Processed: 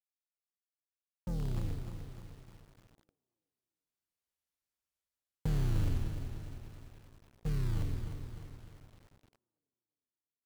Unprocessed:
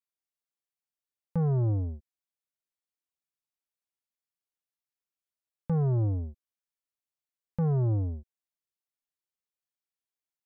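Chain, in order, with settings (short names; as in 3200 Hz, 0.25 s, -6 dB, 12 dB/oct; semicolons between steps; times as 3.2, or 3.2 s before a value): octaver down 2 oct, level +3 dB; Doppler pass-by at 4.6, 22 m/s, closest 18 m; treble ducked by the level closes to 400 Hz, closed at -30 dBFS; in parallel at +2 dB: compressor 8:1, threshold -29 dBFS, peak gain reduction 7 dB; on the sum: limiter -19 dBFS, peak gain reduction 3.5 dB; short-mantissa float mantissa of 2-bit; band-limited delay 0.35 s, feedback 41%, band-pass 590 Hz, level -14 dB; lo-fi delay 0.302 s, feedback 55%, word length 8-bit, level -8 dB; gain -6.5 dB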